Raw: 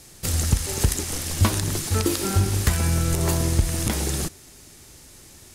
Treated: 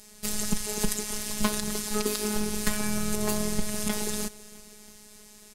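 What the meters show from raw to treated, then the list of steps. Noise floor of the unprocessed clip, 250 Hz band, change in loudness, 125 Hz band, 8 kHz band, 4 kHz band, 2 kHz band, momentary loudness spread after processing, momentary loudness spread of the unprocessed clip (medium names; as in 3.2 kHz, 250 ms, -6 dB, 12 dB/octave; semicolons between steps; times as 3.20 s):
-48 dBFS, -2.0 dB, -6.0 dB, -16.5 dB, -3.5 dB, -3.5 dB, -3.0 dB, 20 LU, 5 LU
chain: feedback delay 328 ms, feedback 56%, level -21 dB; robot voice 211 Hz; trim -1.5 dB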